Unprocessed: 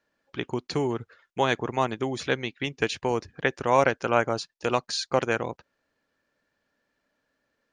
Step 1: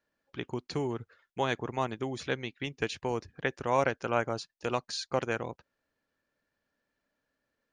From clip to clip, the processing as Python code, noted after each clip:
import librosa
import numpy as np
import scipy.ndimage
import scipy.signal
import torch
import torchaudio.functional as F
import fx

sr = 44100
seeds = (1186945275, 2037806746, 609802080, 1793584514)

y = fx.low_shelf(x, sr, hz=130.0, db=4.5)
y = y * librosa.db_to_amplitude(-6.5)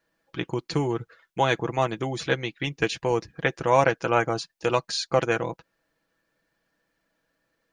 y = x + 0.52 * np.pad(x, (int(6.1 * sr / 1000.0), 0))[:len(x)]
y = y * librosa.db_to_amplitude(6.5)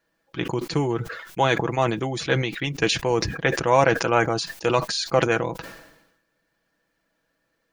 y = fx.sustainer(x, sr, db_per_s=60.0)
y = y * librosa.db_to_amplitude(1.5)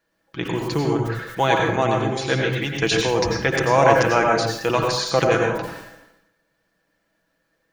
y = fx.rev_plate(x, sr, seeds[0], rt60_s=0.64, hf_ratio=0.65, predelay_ms=80, drr_db=0.5)